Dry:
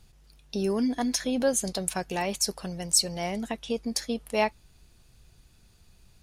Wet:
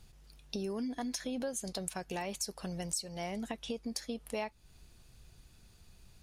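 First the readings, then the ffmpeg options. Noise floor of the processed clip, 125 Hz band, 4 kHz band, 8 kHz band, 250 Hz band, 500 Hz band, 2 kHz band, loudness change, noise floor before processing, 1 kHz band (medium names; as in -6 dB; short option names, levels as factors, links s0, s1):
-61 dBFS, -7.0 dB, -11.0 dB, -11.5 dB, -9.0 dB, -10.5 dB, -10.0 dB, -10.5 dB, -59 dBFS, -10.0 dB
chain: -af "acompressor=threshold=0.0178:ratio=4,volume=0.891"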